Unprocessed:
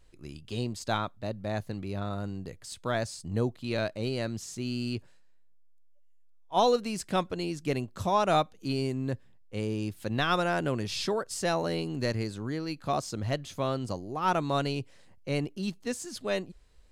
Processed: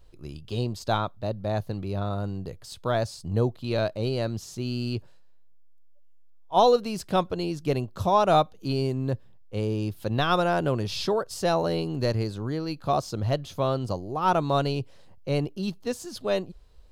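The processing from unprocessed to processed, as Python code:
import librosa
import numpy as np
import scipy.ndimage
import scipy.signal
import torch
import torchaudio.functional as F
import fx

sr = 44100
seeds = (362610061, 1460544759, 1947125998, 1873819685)

y = fx.graphic_eq(x, sr, hz=(250, 2000, 8000), db=(-5, -9, -10))
y = y * 10.0 ** (6.5 / 20.0)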